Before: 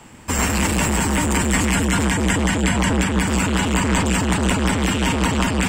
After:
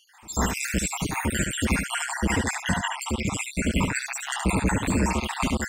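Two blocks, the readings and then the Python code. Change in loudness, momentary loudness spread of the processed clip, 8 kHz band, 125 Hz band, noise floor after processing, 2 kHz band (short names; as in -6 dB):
-7.0 dB, 4 LU, -6.5 dB, -8.0 dB, -45 dBFS, -6.0 dB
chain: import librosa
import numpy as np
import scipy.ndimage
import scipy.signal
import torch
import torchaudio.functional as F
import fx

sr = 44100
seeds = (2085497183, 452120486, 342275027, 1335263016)

p1 = fx.spec_dropout(x, sr, seeds[0], share_pct=69)
p2 = p1 + fx.echo_single(p1, sr, ms=73, db=-5.5, dry=0)
y = F.gain(torch.from_numpy(p2), -2.5).numpy()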